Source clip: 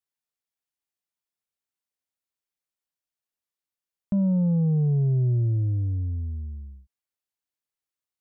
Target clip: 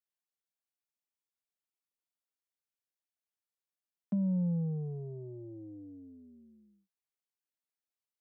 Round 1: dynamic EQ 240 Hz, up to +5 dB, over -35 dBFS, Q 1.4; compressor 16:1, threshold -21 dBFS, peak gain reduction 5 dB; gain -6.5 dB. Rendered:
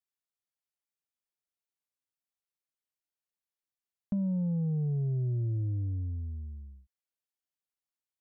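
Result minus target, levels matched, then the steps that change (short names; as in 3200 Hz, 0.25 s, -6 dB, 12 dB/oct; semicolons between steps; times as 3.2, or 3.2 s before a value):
125 Hz band +4.5 dB
add after compressor: Chebyshev high-pass 170 Hz, order 4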